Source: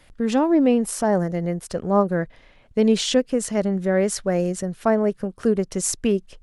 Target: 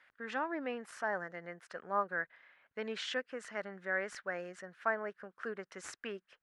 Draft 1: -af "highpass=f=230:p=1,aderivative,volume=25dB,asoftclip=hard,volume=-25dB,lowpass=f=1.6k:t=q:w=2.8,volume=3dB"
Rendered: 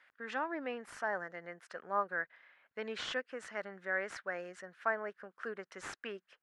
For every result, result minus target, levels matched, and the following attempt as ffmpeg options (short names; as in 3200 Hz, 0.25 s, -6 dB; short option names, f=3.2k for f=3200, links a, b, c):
overloaded stage: distortion +12 dB; 125 Hz band -3.0 dB
-af "highpass=f=230:p=1,aderivative,volume=16.5dB,asoftclip=hard,volume=-16.5dB,lowpass=f=1.6k:t=q:w=2.8,volume=3dB"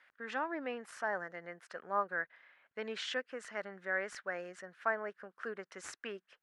125 Hz band -3.0 dB
-af "highpass=f=65:p=1,aderivative,volume=16.5dB,asoftclip=hard,volume=-16.5dB,lowpass=f=1.6k:t=q:w=2.8,volume=3dB"